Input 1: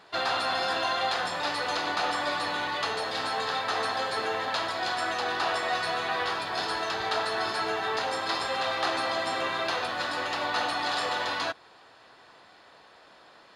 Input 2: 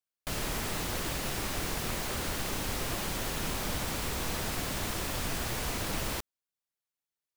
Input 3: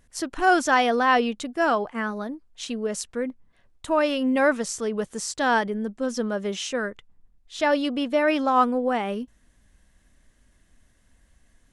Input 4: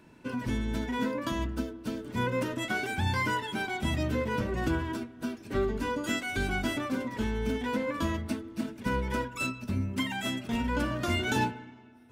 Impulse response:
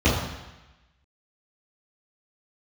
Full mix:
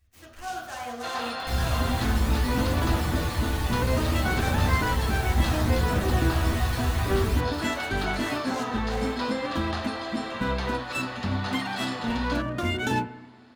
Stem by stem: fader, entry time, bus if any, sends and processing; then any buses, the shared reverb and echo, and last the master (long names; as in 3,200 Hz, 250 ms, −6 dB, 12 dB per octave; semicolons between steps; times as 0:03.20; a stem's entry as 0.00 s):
−5.5 dB, 0.90 s, no send, no processing
−6.0 dB, 1.20 s, send −17.5 dB, parametric band 11,000 Hz +2.5 dB; phase shifter 0.63 Hz, delay 1.3 ms, feedback 46%
−7.5 dB, 0.00 s, send −13.5 dB, de-essing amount 100%; guitar amp tone stack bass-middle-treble 10-0-10; short delay modulated by noise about 5,400 Hz, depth 0.054 ms
+2.0 dB, 1.55 s, no send, adaptive Wiener filter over 9 samples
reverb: on, RT60 1.0 s, pre-delay 3 ms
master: no processing